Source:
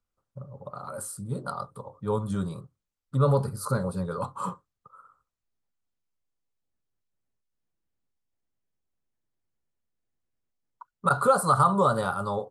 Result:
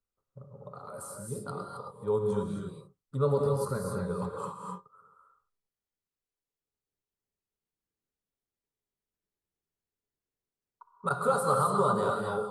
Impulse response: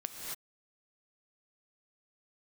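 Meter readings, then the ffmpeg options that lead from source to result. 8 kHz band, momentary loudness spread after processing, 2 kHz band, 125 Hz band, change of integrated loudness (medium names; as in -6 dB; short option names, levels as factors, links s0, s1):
-4.5 dB, 17 LU, -5.5 dB, -6.0 dB, -3.5 dB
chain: -filter_complex "[0:a]equalizer=f=420:t=o:w=0.25:g=9[s0];[1:a]atrim=start_sample=2205,afade=t=out:st=0.31:d=0.01,atrim=end_sample=14112,asetrate=41895,aresample=44100[s1];[s0][s1]afir=irnorm=-1:irlink=0,volume=0.531"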